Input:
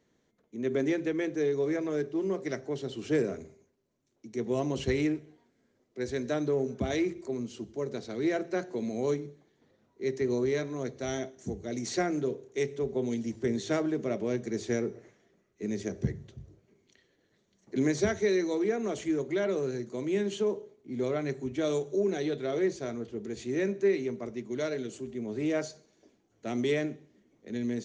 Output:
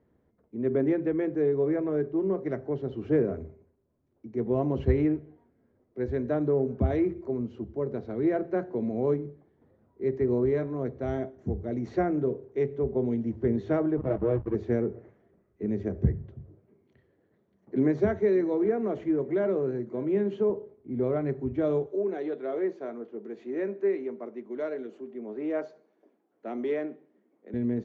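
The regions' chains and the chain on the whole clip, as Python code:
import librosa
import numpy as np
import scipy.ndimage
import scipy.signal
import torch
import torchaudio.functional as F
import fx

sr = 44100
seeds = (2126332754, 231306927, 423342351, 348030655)

y = fx.chain(x, sr, fx.lowpass(hz=5700.0, slope=12),
    fx.comb(ms=6.3, depth=0.87),
    fx.backlash(play_db=-31.5), at=(13.97, 14.55))
y = fx.chain(y, sr, fx.highpass(hz=130.0, slope=12),
    fx.echo_single(ms=584, db=-23.0), at=(16.33, 20.5))
y = fx.chain(y, sr, fx.highpass(hz=210.0, slope=24),
    fx.low_shelf(hz=330.0, db=-9.0), at=(21.86, 27.54))
y = scipy.signal.sosfilt(scipy.signal.butter(2, 1200.0, 'lowpass', fs=sr, output='sos'), y)
y = fx.peak_eq(y, sr, hz=76.0, db=11.5, octaves=0.75)
y = y * librosa.db_to_amplitude(3.0)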